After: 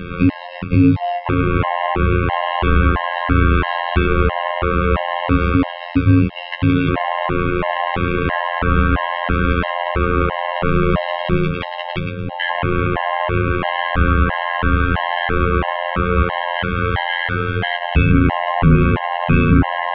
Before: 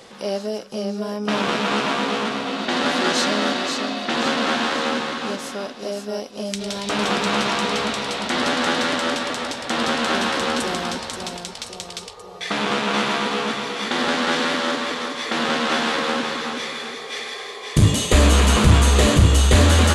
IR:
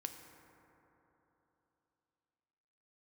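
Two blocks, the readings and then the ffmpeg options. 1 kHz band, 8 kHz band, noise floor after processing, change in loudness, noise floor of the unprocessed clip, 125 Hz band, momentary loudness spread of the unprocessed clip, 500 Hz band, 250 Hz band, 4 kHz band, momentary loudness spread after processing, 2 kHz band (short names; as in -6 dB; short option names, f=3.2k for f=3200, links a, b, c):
+5.0 dB, under -40 dB, -29 dBFS, +3.0 dB, -37 dBFS, +5.0 dB, 14 LU, +3.0 dB, +5.5 dB, -6.0 dB, 5 LU, +3.0 dB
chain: -filter_complex "[0:a]acrossover=split=2200[a][b];[b]acompressor=threshold=-37dB:ratio=6[c];[a][c]amix=inputs=2:normalize=0,afftfilt=real='hypot(re,im)*cos(PI*b)':imag='0':win_size=2048:overlap=0.75,aeval=exprs='0.631*(cos(1*acos(clip(val(0)/0.631,-1,1)))-cos(1*PI/2))+0.0398*(cos(2*acos(clip(val(0)/0.631,-1,1)))-cos(2*PI/2))':c=same,highpass=f=150:t=q:w=0.5412,highpass=f=150:t=q:w=1.307,lowpass=f=3.2k:t=q:w=0.5176,lowpass=f=3.2k:t=q:w=0.7071,lowpass=f=3.2k:t=q:w=1.932,afreqshift=-330,alimiter=level_in=24.5dB:limit=-1dB:release=50:level=0:latency=1,afftfilt=real='re*gt(sin(2*PI*1.5*pts/sr)*(1-2*mod(floor(b*sr/1024/540),2)),0)':imag='im*gt(sin(2*PI*1.5*pts/sr)*(1-2*mod(floor(b*sr/1024/540),2)),0)':win_size=1024:overlap=0.75,volume=-2dB"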